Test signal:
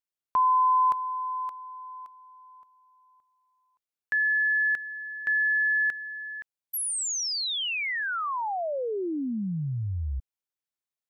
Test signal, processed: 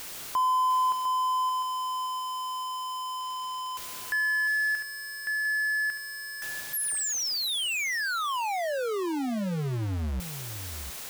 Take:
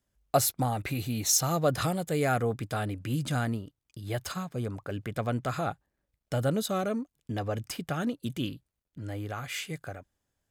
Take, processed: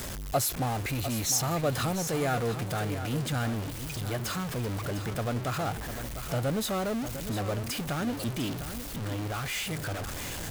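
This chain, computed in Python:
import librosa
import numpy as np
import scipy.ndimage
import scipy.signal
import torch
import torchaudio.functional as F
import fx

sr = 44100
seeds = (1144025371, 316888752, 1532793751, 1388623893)

y = x + 0.5 * 10.0 ** (-25.5 / 20.0) * np.sign(x)
y = y + 10.0 ** (-10.5 / 20.0) * np.pad(y, (int(702 * sr / 1000.0), 0))[:len(y)]
y = F.gain(torch.from_numpy(y), -5.0).numpy()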